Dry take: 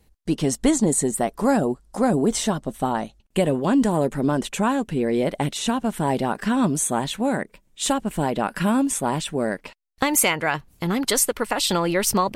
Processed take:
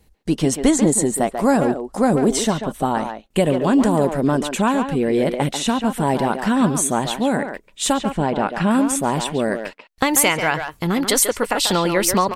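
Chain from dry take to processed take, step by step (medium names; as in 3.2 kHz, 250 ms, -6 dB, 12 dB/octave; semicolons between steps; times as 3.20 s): 8.10–8.71 s: distance through air 92 m; speakerphone echo 140 ms, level -6 dB; trim +3 dB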